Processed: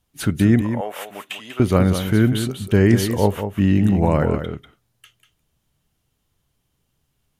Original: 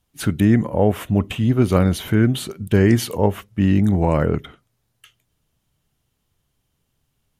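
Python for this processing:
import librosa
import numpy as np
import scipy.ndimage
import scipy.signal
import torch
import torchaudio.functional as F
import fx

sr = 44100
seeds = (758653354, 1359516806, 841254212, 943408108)

y = fx.highpass(x, sr, hz=920.0, slope=12, at=(0.61, 1.6))
y = y + 10.0 ** (-9.0 / 20.0) * np.pad(y, (int(193 * sr / 1000.0), 0))[:len(y)]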